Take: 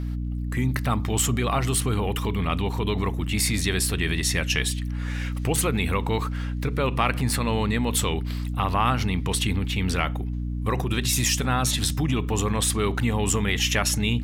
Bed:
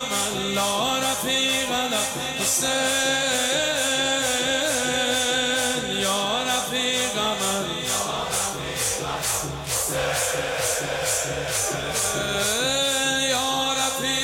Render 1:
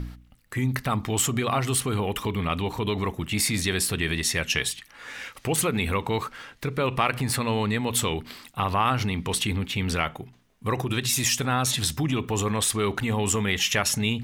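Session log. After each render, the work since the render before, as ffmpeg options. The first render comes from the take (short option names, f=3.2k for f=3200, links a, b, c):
-af "bandreject=f=60:t=h:w=4,bandreject=f=120:t=h:w=4,bandreject=f=180:t=h:w=4,bandreject=f=240:t=h:w=4,bandreject=f=300:t=h:w=4"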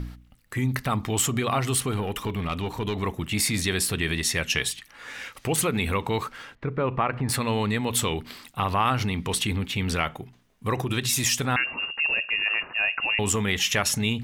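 -filter_complex "[0:a]asettb=1/sr,asplit=3[a][b][c];[a]atrim=end=1.914[d];[b]atrim=start=1.91:end=3.03,asetpts=PTS-STARTPTS,afade=t=in:d=0.004:c=qsin,afade=t=out:st=1.116:d=0.004:c=qsin,aeval=exprs='(tanh(6.31*val(0)+0.4)-tanh(0.4))/6.31':c=same[e];[c]atrim=start=3.026[f];[d][e]acrossfade=d=0.004:c1=hsin:c2=qsin[g];[g][f]acrossfade=d=0.004:c1=qsin:c2=hsin,asettb=1/sr,asplit=3[h][i][j];[h]atrim=end=6.554[k];[i]atrim=start=6.55:end=7.29,asetpts=PTS-STARTPTS,afade=t=in:d=0.004:c=qsin,afade=t=out:st=0.736:d=0.004:c=qsin,lowpass=1.6k[l];[j]atrim=start=7.286[m];[k][l]acrossfade=d=0.004:c1=hsin:c2=qsin[n];[n][m]acrossfade=d=0.004:c1=qsin:c2=hsin,asettb=1/sr,asplit=3[o][p][q];[o]atrim=end=11.564[r];[p]atrim=start=11.56:end=13.19,asetpts=PTS-STARTPTS,afade=t=in:d=0.004:c=qsin,afade=t=out:st=1.626:d=0.004:c=qsin,lowpass=f=2.5k:t=q:w=0.5098,lowpass=f=2.5k:t=q:w=0.6013,lowpass=f=2.5k:t=q:w=0.9,lowpass=f=2.5k:t=q:w=2.563,afreqshift=-2900[s];[q]atrim=start=13.186[t];[r][s]acrossfade=d=0.004:c1=hsin:c2=qsin[u];[u][t]acrossfade=d=0.004:c1=qsin:c2=hsin"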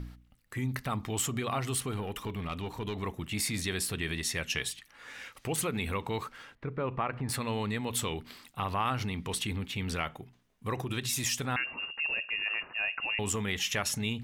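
-af "volume=-7.5dB"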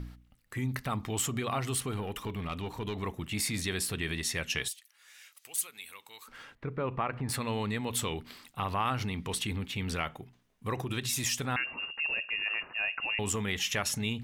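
-filter_complex "[0:a]asettb=1/sr,asplit=3[a][b][c];[a]atrim=end=4.684[d];[b]atrim=start=4.68:end=6.28,asetpts=PTS-STARTPTS,afade=t=in:d=0.004:c=qsin,afade=t=out:st=1.596:d=0.004:c=qsin,aderivative[e];[c]atrim=start=6.276[f];[d][e]acrossfade=d=0.004:c1=hsin:c2=qsin[g];[g][f]acrossfade=d=0.004:c1=qsin:c2=hsin"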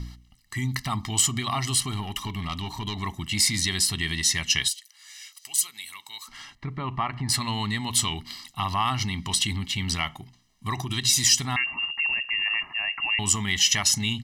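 -af "equalizer=f=5.2k:w=0.78:g=12.5,aecho=1:1:1:0.99"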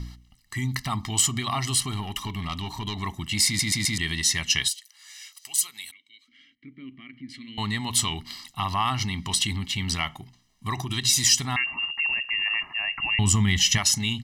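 -filter_complex "[0:a]asettb=1/sr,asplit=3[a][b][c];[a]atrim=end=5.914[d];[b]atrim=start=5.91:end=7.58,asetpts=PTS-STARTPTS,afade=t=in:d=0.004:c=qsin,afade=t=out:st=1.666:d=0.004:c=qsin,asplit=3[e][f][g];[e]bandpass=f=270:t=q:w=8,volume=0dB[h];[f]bandpass=f=2.29k:t=q:w=8,volume=-6dB[i];[g]bandpass=f=3.01k:t=q:w=8,volume=-9dB[j];[h][i][j]amix=inputs=3:normalize=0[k];[c]atrim=start=7.576[l];[d][k]acrossfade=d=0.004:c1=hsin:c2=qsin[m];[m][l]acrossfade=d=0.004:c1=qsin:c2=hsin,asettb=1/sr,asplit=3[n][o][p];[n]atrim=end=12.914[q];[o]atrim=start=12.91:end=13.78,asetpts=PTS-STARTPTS,afade=t=in:d=0.004:c=qsin,afade=t=out:st=0.866:d=0.004:c=qsin,bass=f=250:g=11,treble=f=4k:g=-1[r];[p]atrim=start=13.776[s];[q][r]acrossfade=d=0.004:c1=hsin:c2=qsin[t];[t][s]acrossfade=d=0.004:c1=qsin:c2=hsin,asplit=5[u][v][w][x][y];[u]atrim=end=3.592[z];[v]atrim=start=3.458:end=3.592[aa];[w]atrim=start=3.458:end=3.592[ab];[x]atrim=start=3.458:end=3.592[ac];[y]atrim=start=3.978[ad];[z][aa]acrossfade=d=0.004:c1=hsin:c2=hsin[ae];[ae][ab]acrossfade=d=0.004:c1=hsin:c2=hsin[af];[af][ac]acrossfade=d=0.004:c1=hsin:c2=hsin[ag];[ag][ad]acrossfade=d=0.004:c1=hsin:c2=hsin"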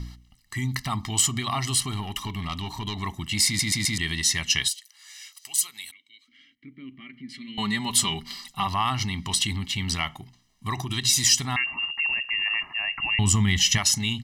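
-filter_complex "[0:a]asettb=1/sr,asplit=3[a][b][c];[a]atrim=end=7.004[d];[b]atrim=start=7:end=8.67,asetpts=PTS-STARTPTS,afade=t=in:d=0.004:c=qsin,afade=t=out:st=1.666:d=0.004:c=qsin,aecho=1:1:5.1:0.65,atrim=end_sample=73647[e];[c]atrim=start=8.666[f];[d][e]acrossfade=d=0.004:c1=hsin:c2=qsin[g];[g][f]acrossfade=d=0.004:c1=qsin:c2=hsin"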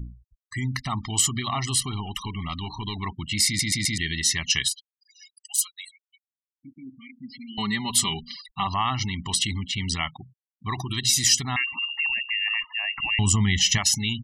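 -af "afftfilt=real='re*gte(hypot(re,im),0.0178)':imag='im*gte(hypot(re,im),0.0178)':win_size=1024:overlap=0.75"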